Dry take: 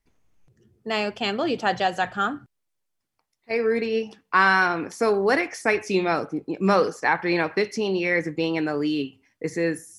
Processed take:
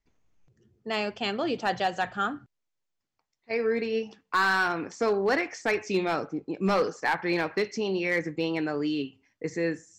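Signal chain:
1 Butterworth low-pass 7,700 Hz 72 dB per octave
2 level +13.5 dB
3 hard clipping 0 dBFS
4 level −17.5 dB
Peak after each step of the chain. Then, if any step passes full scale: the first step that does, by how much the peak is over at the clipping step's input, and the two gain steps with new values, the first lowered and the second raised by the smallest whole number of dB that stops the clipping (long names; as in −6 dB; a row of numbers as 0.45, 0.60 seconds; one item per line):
−5.5, +8.0, 0.0, −17.5 dBFS
step 2, 8.0 dB
step 2 +5.5 dB, step 4 −9.5 dB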